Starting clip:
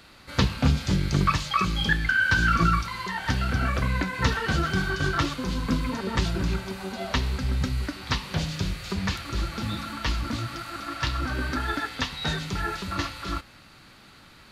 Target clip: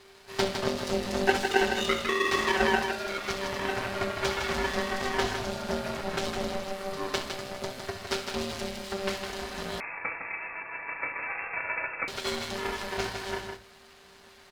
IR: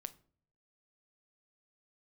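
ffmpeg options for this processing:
-filter_complex "[0:a]highpass=frequency=190:width=0.5412,highpass=frequency=190:width=1.3066,equalizer=frequency=840:width_type=o:width=0.77:gain=3,aecho=1:1:6.1:0.78,aeval=exprs='max(val(0),0)':channel_layout=same,aeval=exprs='val(0)*sin(2*PI*390*n/s)':channel_layout=same,aecho=1:1:65|158:0.251|0.501[link_01];[1:a]atrim=start_sample=2205,asetrate=57330,aresample=44100[link_02];[link_01][link_02]afir=irnorm=-1:irlink=0,asettb=1/sr,asplit=3[link_03][link_04][link_05];[link_03]atrim=end=9.804[link_06];[link_04]atrim=start=9.8:end=12.08,asetpts=PTS-STARTPTS,afade=type=in:duration=0.004:curve=qsin,afade=type=out:start_time=2.276:duration=0.004:curve=qsin,lowpass=frequency=2300:width_type=q:width=0.5098,lowpass=frequency=2300:width_type=q:width=0.6013,lowpass=frequency=2300:width_type=q:width=0.9,lowpass=frequency=2300:width_type=q:width=2.563,afreqshift=-2700[link_07];[link_05]atrim=start=12.076[link_08];[link_06][link_07]acrossfade=duration=0.004:curve1=hsin:curve2=qsin[link_09];[link_09][link_08]acrossfade=duration=0.004:curve1=qsin:curve2=hsin,volume=7.5dB"

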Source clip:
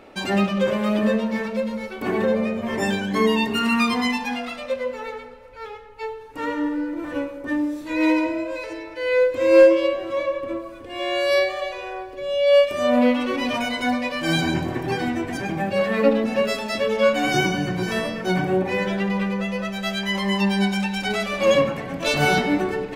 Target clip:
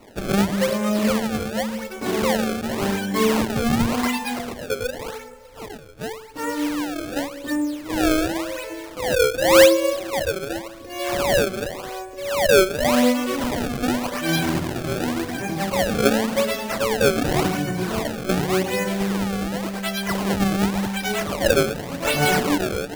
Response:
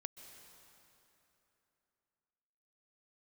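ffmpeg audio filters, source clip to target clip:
-af "acrusher=samples=26:mix=1:aa=0.000001:lfo=1:lforange=41.6:lforate=0.89"

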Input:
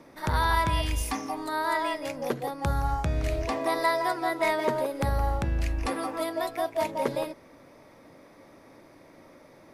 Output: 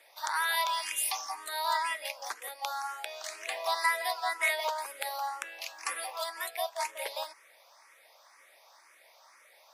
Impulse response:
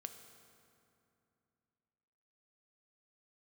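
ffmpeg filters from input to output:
-filter_complex "[0:a]highpass=frequency=730:width=0.5412,highpass=frequency=730:width=1.3066,acrossover=split=1300[link_01][link_02];[link_02]crystalizer=i=4.5:c=0[link_03];[link_01][link_03]amix=inputs=2:normalize=0,highshelf=frequency=6600:gain=-11.5,asplit=2[link_04][link_05];[link_05]afreqshift=2[link_06];[link_04][link_06]amix=inputs=2:normalize=1"

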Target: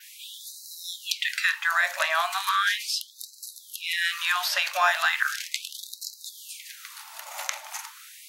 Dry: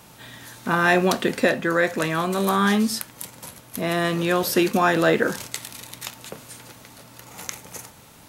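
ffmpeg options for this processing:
ffmpeg -i in.wav -filter_complex "[0:a]acrossover=split=1300|5800[link_01][link_02][link_03];[link_01]acompressor=threshold=-30dB:ratio=4[link_04];[link_02]acompressor=threshold=-26dB:ratio=4[link_05];[link_03]acompressor=threshold=-44dB:ratio=4[link_06];[link_04][link_05][link_06]amix=inputs=3:normalize=0,adynamicequalizer=threshold=0.002:dfrequency=9000:dqfactor=2:tfrequency=9000:tqfactor=2:attack=5:release=100:ratio=0.375:range=1.5:mode=cutabove:tftype=bell,afftfilt=real='re*gte(b*sr/1024,520*pow(3900/520,0.5+0.5*sin(2*PI*0.37*pts/sr)))':imag='im*gte(b*sr/1024,520*pow(3900/520,0.5+0.5*sin(2*PI*0.37*pts/sr)))':win_size=1024:overlap=0.75,volume=5.5dB" out.wav

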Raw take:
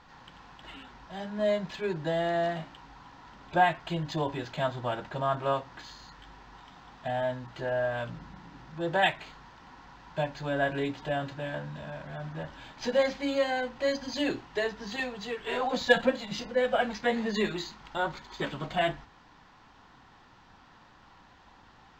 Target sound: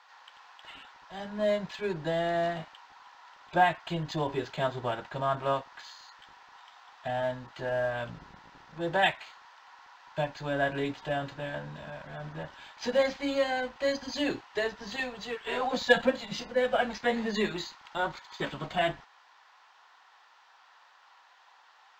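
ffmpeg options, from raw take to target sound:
ffmpeg -i in.wav -filter_complex "[0:a]asettb=1/sr,asplit=3[link_01][link_02][link_03];[link_01]atrim=end=4.304[link_04];[link_02]atrim=start=4.3:end=4.92,asetpts=PTS-STARTPTS,afade=type=in:duration=0.004:curve=qsin,afade=type=out:start_time=0.616:duration=0.004:curve=qsin,equalizer=frequency=410:width_type=o:width=0.23:gain=11[link_05];[link_03]atrim=start=4.916[link_06];[link_04][link_05]acrossfade=duration=0.004:curve1=hsin:curve2=qsin[link_07];[link_07][link_06]acrossfade=duration=0.004:curve1=qsin:curve2=hsin,acrossover=split=620|1200[link_08][link_09][link_10];[link_08]aeval=exprs='sgn(val(0))*max(abs(val(0))-0.00355,0)':channel_layout=same[link_11];[link_11][link_09][link_10]amix=inputs=3:normalize=0" out.wav

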